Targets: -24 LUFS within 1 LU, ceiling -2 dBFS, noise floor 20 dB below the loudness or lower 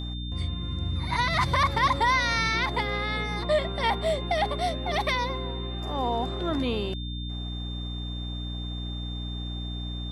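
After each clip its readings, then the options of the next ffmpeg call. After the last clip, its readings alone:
hum 60 Hz; highest harmonic 300 Hz; hum level -31 dBFS; steady tone 3.6 kHz; tone level -39 dBFS; loudness -28.0 LUFS; peak level -12.0 dBFS; loudness target -24.0 LUFS
-> -af "bandreject=f=60:t=h:w=4,bandreject=f=120:t=h:w=4,bandreject=f=180:t=h:w=4,bandreject=f=240:t=h:w=4,bandreject=f=300:t=h:w=4"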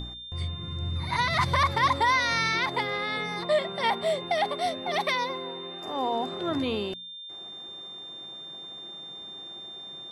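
hum not found; steady tone 3.6 kHz; tone level -39 dBFS
-> -af "bandreject=f=3600:w=30"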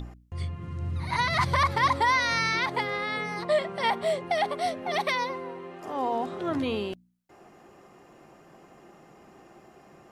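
steady tone not found; loudness -27.5 LUFS; peak level -13.0 dBFS; loudness target -24.0 LUFS
-> -af "volume=1.5"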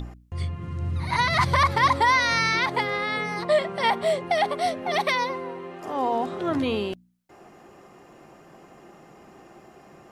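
loudness -24.0 LUFS; peak level -9.5 dBFS; noise floor -52 dBFS

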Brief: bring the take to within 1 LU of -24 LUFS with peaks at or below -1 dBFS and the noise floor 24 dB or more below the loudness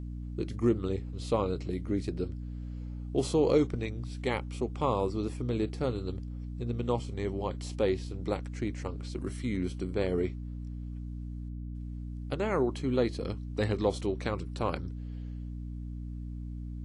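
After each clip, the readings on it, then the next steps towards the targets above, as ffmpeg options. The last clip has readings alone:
hum 60 Hz; highest harmonic 300 Hz; hum level -36 dBFS; loudness -33.0 LUFS; peak level -13.5 dBFS; loudness target -24.0 LUFS
-> -af "bandreject=f=60:t=h:w=6,bandreject=f=120:t=h:w=6,bandreject=f=180:t=h:w=6,bandreject=f=240:t=h:w=6,bandreject=f=300:t=h:w=6"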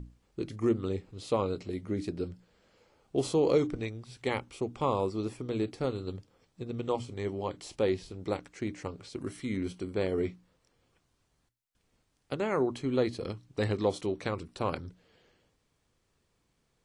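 hum not found; loudness -33.0 LUFS; peak level -14.5 dBFS; loudness target -24.0 LUFS
-> -af "volume=2.82"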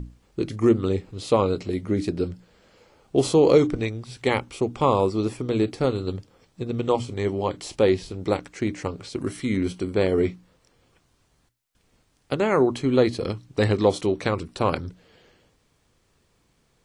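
loudness -24.0 LUFS; peak level -5.5 dBFS; noise floor -66 dBFS

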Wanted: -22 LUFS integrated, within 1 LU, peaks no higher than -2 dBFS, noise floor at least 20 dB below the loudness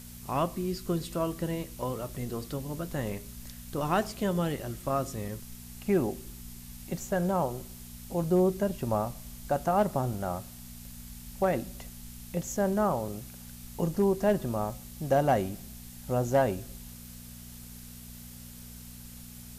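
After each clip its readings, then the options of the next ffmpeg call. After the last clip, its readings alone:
hum 60 Hz; highest harmonic 240 Hz; hum level -45 dBFS; noise floor -46 dBFS; noise floor target -51 dBFS; loudness -30.5 LUFS; peak level -16.0 dBFS; loudness target -22.0 LUFS
-> -af "bandreject=f=60:t=h:w=4,bandreject=f=120:t=h:w=4,bandreject=f=180:t=h:w=4,bandreject=f=240:t=h:w=4"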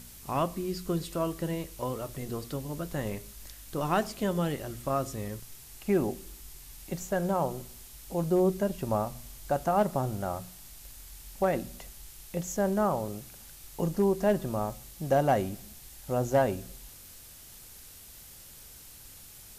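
hum not found; noise floor -50 dBFS; noise floor target -51 dBFS
-> -af "afftdn=nr=6:nf=-50"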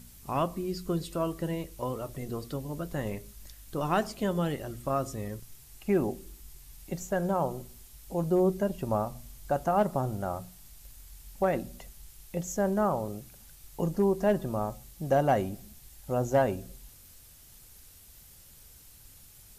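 noise floor -54 dBFS; loudness -31.0 LUFS; peak level -15.5 dBFS; loudness target -22.0 LUFS
-> -af "volume=2.82"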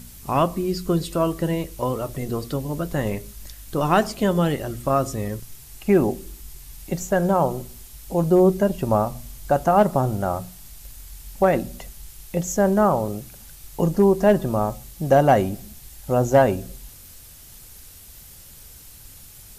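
loudness -22.0 LUFS; peak level -6.5 dBFS; noise floor -45 dBFS

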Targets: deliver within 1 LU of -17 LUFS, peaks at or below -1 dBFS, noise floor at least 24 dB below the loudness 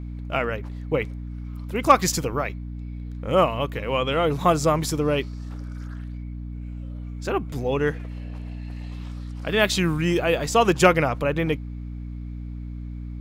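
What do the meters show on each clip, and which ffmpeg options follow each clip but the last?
hum 60 Hz; highest harmonic 300 Hz; hum level -31 dBFS; loudness -23.0 LUFS; peak level -4.0 dBFS; loudness target -17.0 LUFS
-> -af "bandreject=f=60:t=h:w=6,bandreject=f=120:t=h:w=6,bandreject=f=180:t=h:w=6,bandreject=f=240:t=h:w=6,bandreject=f=300:t=h:w=6"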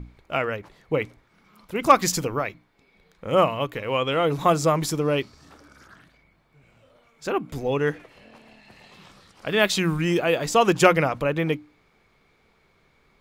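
hum not found; loudness -23.0 LUFS; peak level -3.0 dBFS; loudness target -17.0 LUFS
-> -af "volume=2,alimiter=limit=0.891:level=0:latency=1"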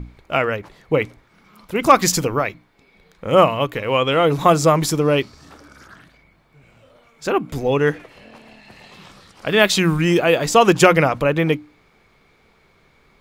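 loudness -17.5 LUFS; peak level -1.0 dBFS; noise floor -57 dBFS

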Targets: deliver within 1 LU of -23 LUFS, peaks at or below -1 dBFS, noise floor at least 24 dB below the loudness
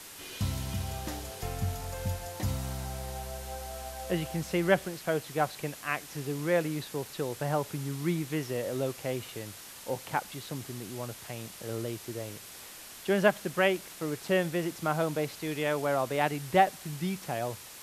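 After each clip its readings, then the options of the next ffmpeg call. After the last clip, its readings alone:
noise floor -47 dBFS; noise floor target -57 dBFS; loudness -32.5 LUFS; peak level -8.0 dBFS; loudness target -23.0 LUFS
-> -af "afftdn=nr=10:nf=-47"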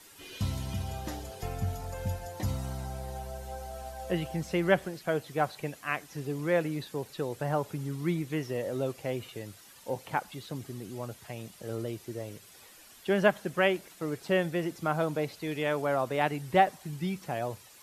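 noise floor -54 dBFS; noise floor target -57 dBFS
-> -af "afftdn=nr=6:nf=-54"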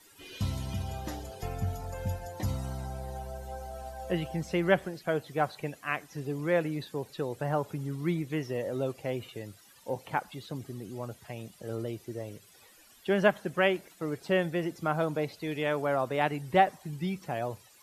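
noise floor -58 dBFS; loudness -32.5 LUFS; peak level -8.5 dBFS; loudness target -23.0 LUFS
-> -af "volume=2.99,alimiter=limit=0.891:level=0:latency=1"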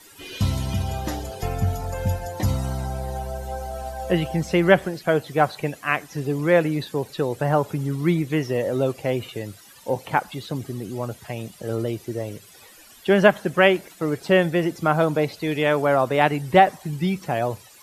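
loudness -23.0 LUFS; peak level -1.0 dBFS; noise floor -49 dBFS

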